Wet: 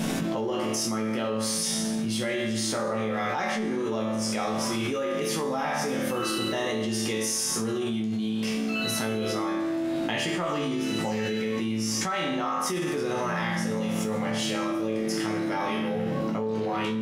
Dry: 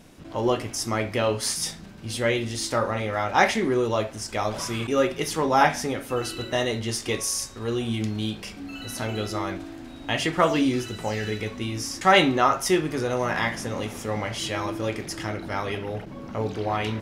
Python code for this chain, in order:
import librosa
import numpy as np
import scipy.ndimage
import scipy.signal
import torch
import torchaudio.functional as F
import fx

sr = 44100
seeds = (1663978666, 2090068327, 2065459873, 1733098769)

p1 = fx.low_shelf_res(x, sr, hz=110.0, db=-11.0, q=3.0)
p2 = fx.hum_notches(p1, sr, base_hz=50, count=3)
p3 = fx.resonator_bank(p2, sr, root=38, chord='minor', decay_s=0.76)
p4 = 10.0 ** (-33.5 / 20.0) * np.tanh(p3 / 10.0 ** (-33.5 / 20.0))
p5 = p3 + (p4 * librosa.db_to_amplitude(-6.5))
y = fx.env_flatten(p5, sr, amount_pct=100)